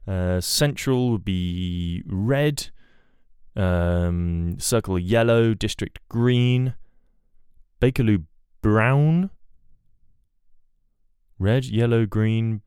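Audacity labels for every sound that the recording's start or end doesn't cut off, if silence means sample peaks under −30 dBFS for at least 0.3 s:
3.570000	6.710000	sound
7.820000	8.210000	sound
8.640000	9.270000	sound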